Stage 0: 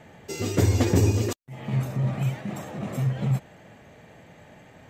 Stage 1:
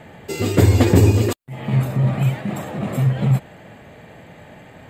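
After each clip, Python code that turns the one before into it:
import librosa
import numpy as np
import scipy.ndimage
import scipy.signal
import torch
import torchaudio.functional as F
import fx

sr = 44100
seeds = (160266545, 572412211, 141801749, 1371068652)

y = fx.peak_eq(x, sr, hz=5900.0, db=-11.5, octaves=0.33)
y = y * 10.0 ** (7.5 / 20.0)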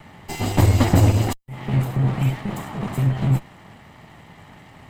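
y = fx.lower_of_two(x, sr, delay_ms=1.0)
y = y * 10.0 ** (-1.5 / 20.0)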